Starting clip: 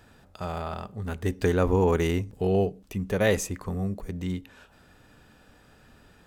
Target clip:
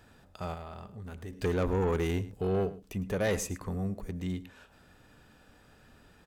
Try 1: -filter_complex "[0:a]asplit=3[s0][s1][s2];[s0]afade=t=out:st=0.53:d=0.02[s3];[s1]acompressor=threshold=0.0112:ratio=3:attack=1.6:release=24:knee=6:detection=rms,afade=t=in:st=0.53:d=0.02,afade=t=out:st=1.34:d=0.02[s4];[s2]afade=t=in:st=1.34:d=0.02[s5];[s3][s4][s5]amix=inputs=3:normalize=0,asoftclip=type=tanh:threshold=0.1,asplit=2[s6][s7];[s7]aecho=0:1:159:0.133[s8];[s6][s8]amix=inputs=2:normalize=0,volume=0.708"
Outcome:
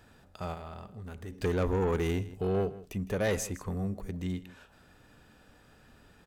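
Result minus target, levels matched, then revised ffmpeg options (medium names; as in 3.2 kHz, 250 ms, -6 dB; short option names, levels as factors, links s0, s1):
echo 52 ms late
-filter_complex "[0:a]asplit=3[s0][s1][s2];[s0]afade=t=out:st=0.53:d=0.02[s3];[s1]acompressor=threshold=0.0112:ratio=3:attack=1.6:release=24:knee=6:detection=rms,afade=t=in:st=0.53:d=0.02,afade=t=out:st=1.34:d=0.02[s4];[s2]afade=t=in:st=1.34:d=0.02[s5];[s3][s4][s5]amix=inputs=3:normalize=0,asoftclip=type=tanh:threshold=0.1,asplit=2[s6][s7];[s7]aecho=0:1:107:0.133[s8];[s6][s8]amix=inputs=2:normalize=0,volume=0.708"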